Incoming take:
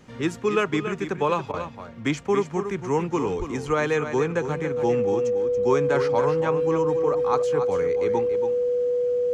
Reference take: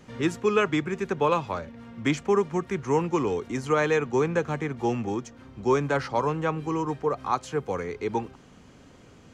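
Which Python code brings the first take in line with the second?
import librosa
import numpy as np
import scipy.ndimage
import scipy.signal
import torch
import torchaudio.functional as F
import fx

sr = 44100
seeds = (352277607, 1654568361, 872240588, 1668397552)

y = fx.notch(x, sr, hz=490.0, q=30.0)
y = fx.fix_deplosive(y, sr, at_s=(3.38,))
y = fx.fix_interpolate(y, sr, at_s=(1.52,), length_ms=16.0)
y = fx.fix_echo_inverse(y, sr, delay_ms=281, level_db=-9.0)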